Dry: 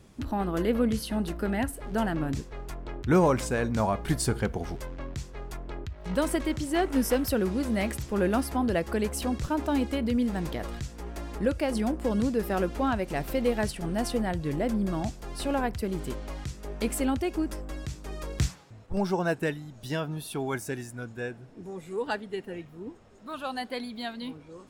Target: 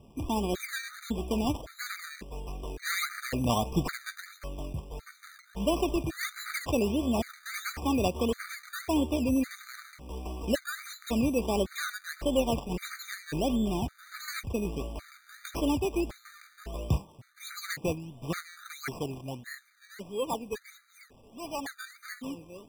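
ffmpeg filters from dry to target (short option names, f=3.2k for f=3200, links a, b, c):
-af "acrusher=samples=18:mix=1:aa=0.000001:lfo=1:lforange=10.8:lforate=1.4,asetrate=48000,aresample=44100,afftfilt=real='re*gt(sin(2*PI*0.9*pts/sr)*(1-2*mod(floor(b*sr/1024/1200),2)),0)':imag='im*gt(sin(2*PI*0.9*pts/sr)*(1-2*mod(floor(b*sr/1024/1200),2)),0)':win_size=1024:overlap=0.75"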